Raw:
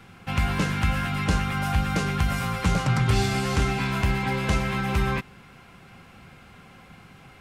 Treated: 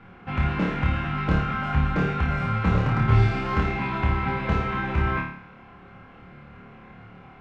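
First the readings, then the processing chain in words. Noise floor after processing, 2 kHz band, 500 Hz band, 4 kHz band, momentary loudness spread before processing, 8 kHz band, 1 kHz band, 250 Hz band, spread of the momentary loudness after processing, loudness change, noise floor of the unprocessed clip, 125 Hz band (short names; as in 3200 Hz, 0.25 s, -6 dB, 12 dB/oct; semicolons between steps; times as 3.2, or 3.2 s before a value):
-48 dBFS, -0.5 dB, 0.0 dB, -7.5 dB, 3 LU, under -20 dB, +1.0 dB, +0.5 dB, 6 LU, +0.5 dB, -50 dBFS, +1.5 dB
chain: LPF 1900 Hz 12 dB/oct; notches 50/100/150 Hz; flutter echo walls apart 4.7 m, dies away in 0.59 s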